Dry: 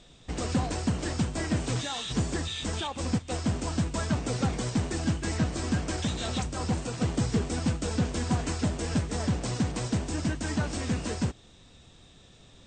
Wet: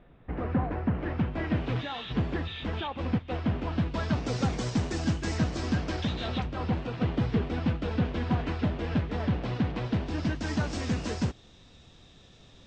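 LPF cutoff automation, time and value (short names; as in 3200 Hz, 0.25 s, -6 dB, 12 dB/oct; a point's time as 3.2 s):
LPF 24 dB/oct
0.82 s 2000 Hz
1.54 s 3200 Hz
3.7 s 3200 Hz
4.42 s 6500 Hz
5.4 s 6500 Hz
6.49 s 3500 Hz
9.86 s 3500 Hz
10.62 s 6400 Hz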